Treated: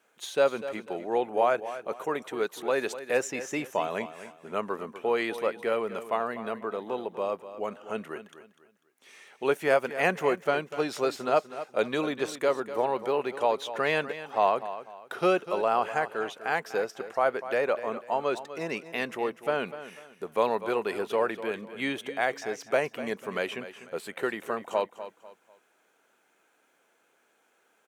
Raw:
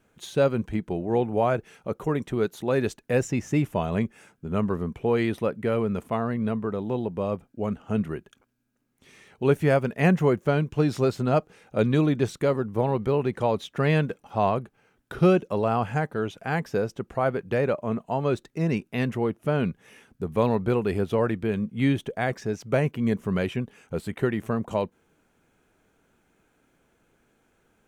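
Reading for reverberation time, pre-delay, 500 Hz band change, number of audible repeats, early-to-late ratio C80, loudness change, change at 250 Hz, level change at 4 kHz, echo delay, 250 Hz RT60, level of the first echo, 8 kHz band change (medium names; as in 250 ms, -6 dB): no reverb, no reverb, -2.0 dB, 3, no reverb, -3.5 dB, -10.5 dB, +1.5 dB, 247 ms, no reverb, -13.0 dB, no reading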